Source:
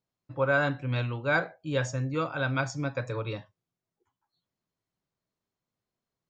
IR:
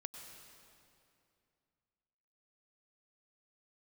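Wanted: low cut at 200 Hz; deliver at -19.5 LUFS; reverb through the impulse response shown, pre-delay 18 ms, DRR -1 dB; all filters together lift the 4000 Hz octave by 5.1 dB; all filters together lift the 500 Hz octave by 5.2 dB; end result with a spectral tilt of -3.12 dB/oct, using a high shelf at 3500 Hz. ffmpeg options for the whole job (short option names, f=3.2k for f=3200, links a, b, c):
-filter_complex "[0:a]highpass=200,equalizer=f=500:t=o:g=6,highshelf=f=3.5k:g=-5.5,equalizer=f=4k:t=o:g=9,asplit=2[a][b];[1:a]atrim=start_sample=2205,adelay=18[c];[b][c]afir=irnorm=-1:irlink=0,volume=4.5dB[d];[a][d]amix=inputs=2:normalize=0,volume=4.5dB"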